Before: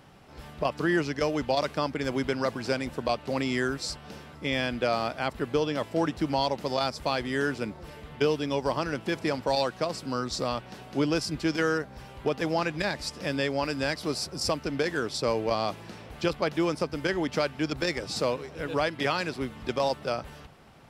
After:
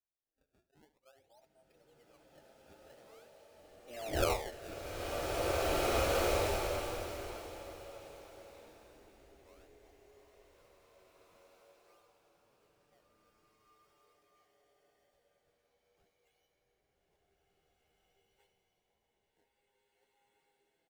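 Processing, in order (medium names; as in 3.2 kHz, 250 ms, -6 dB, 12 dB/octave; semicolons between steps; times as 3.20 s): wind noise 220 Hz -27 dBFS; Doppler pass-by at 4.20 s, 44 m/s, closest 2.4 m; spectral noise reduction 23 dB; treble shelf 7.6 kHz -10.5 dB; harmonic-percussive split percussive -10 dB; three-band isolator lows -13 dB, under 430 Hz, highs -16 dB, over 3.3 kHz; static phaser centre 570 Hz, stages 4; formant-preserving pitch shift -4.5 st; decimation with a swept rate 24×, swing 160% 0.47 Hz; on a send: delay 74 ms -15 dB; on the sum: swelling reverb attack 2050 ms, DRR -7 dB; trim +4.5 dB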